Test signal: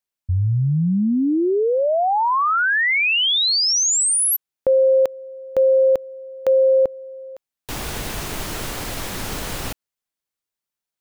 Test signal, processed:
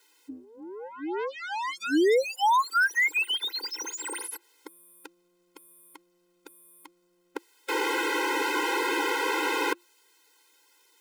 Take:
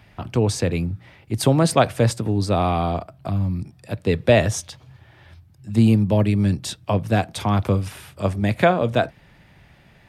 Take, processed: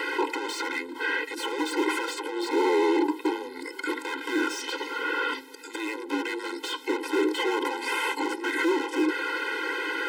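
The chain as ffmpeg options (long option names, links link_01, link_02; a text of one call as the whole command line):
ffmpeg -i in.wav -filter_complex "[0:a]asplit=2[link_01][link_02];[link_02]highpass=frequency=720:poles=1,volume=38dB,asoftclip=type=tanh:threshold=-2.5dB[link_03];[link_01][link_03]amix=inputs=2:normalize=0,lowpass=frequency=5600:poles=1,volume=-6dB,areverse,acompressor=threshold=-20dB:ratio=20:attack=5.1:release=32:knee=6:detection=peak,areverse,afreqshift=-350,acrossover=split=2700[link_04][link_05];[link_05]acompressor=threshold=-36dB:ratio=4:attack=1:release=60[link_06];[link_04][link_06]amix=inputs=2:normalize=0,afftfilt=real='re*eq(mod(floor(b*sr/1024/270),2),1)':imag='im*eq(mod(floor(b*sr/1024/270),2),1)':win_size=1024:overlap=0.75" out.wav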